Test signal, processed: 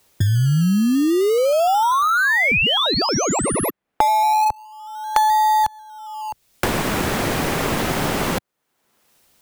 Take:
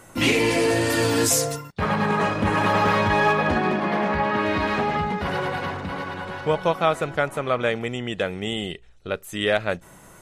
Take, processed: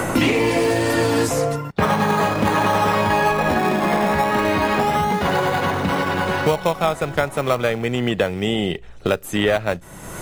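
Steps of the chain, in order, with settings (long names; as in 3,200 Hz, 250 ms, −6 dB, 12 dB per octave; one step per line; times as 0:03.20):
dynamic equaliser 790 Hz, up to +4 dB, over −29 dBFS, Q 1.3
in parallel at −12 dB: sample-and-hold swept by an LFO 23×, swing 60% 0.32 Hz
on the sum: multiband upward and downward compressor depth 100%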